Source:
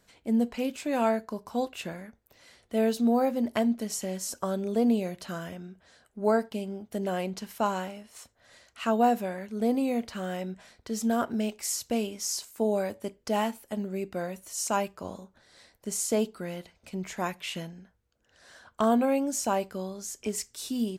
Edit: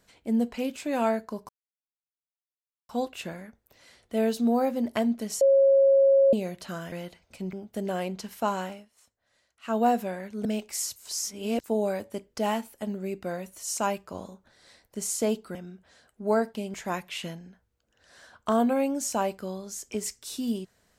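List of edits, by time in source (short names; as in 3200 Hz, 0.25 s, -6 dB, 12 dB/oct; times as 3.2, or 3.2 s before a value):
1.49 insert silence 1.40 s
4.01–4.93 bleep 546 Hz -15.5 dBFS
5.52–6.71 swap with 16.45–17.06
7.91–8.95 dip -14 dB, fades 0.15 s
9.63–11.35 cut
11.86–12.54 reverse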